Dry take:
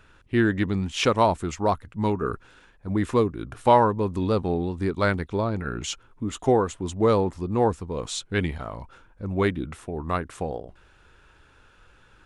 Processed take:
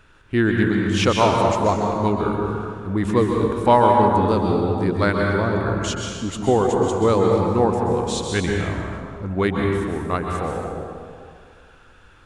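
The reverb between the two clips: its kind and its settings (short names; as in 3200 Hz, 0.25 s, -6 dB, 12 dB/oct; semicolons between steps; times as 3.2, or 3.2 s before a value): plate-style reverb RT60 2.1 s, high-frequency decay 0.6×, pre-delay 0.115 s, DRR 0 dB; gain +2 dB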